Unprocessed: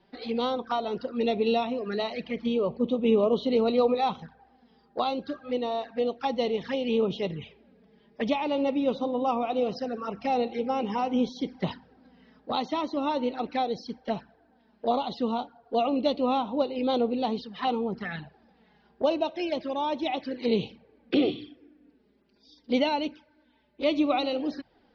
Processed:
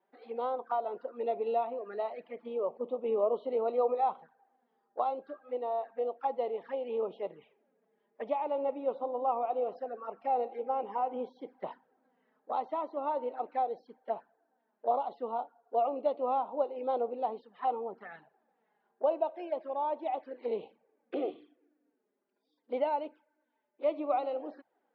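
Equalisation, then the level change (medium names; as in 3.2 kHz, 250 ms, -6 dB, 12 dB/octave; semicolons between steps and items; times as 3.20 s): dynamic bell 690 Hz, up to +8 dB, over -39 dBFS, Q 0.74; high-pass 460 Hz 12 dB/octave; low-pass 1.5 kHz 12 dB/octave; -9.0 dB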